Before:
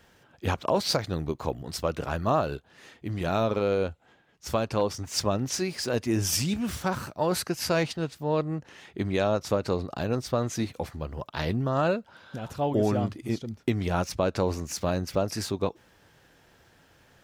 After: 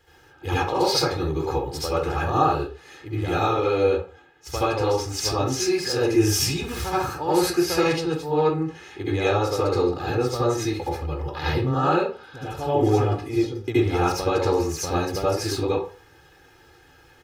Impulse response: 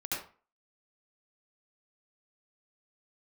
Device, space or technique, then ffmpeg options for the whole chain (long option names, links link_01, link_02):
microphone above a desk: -filter_complex "[0:a]aecho=1:1:2.4:0.85[link_01];[1:a]atrim=start_sample=2205[link_02];[link_01][link_02]afir=irnorm=-1:irlink=0"